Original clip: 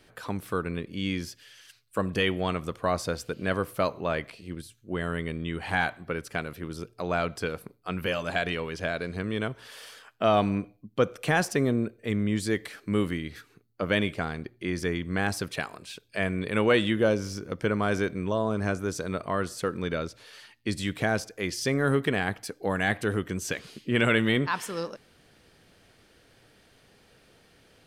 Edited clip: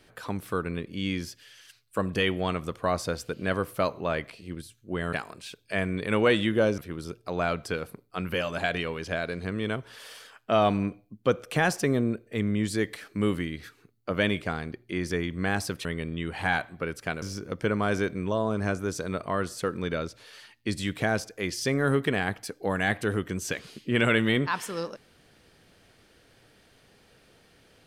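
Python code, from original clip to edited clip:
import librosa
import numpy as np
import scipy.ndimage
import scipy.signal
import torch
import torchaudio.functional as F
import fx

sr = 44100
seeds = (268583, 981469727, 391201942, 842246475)

y = fx.edit(x, sr, fx.swap(start_s=5.13, length_s=1.37, other_s=15.57, other_length_s=1.65), tone=tone)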